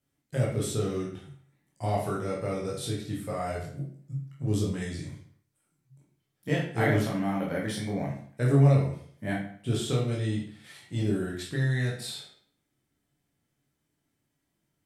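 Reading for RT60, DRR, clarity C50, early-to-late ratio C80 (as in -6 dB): 0.55 s, -4.5 dB, 4.0 dB, 8.5 dB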